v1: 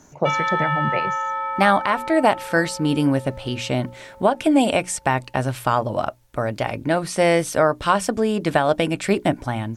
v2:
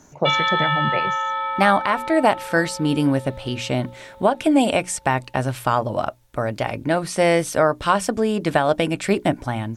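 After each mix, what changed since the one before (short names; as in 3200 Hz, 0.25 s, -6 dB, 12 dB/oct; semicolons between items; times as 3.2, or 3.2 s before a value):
background: add synth low-pass 3700 Hz, resonance Q 7.7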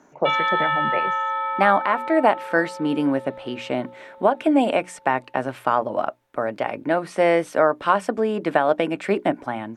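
master: add three-band isolator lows -22 dB, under 200 Hz, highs -14 dB, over 2700 Hz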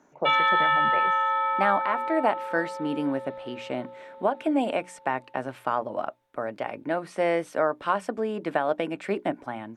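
speech -6.5 dB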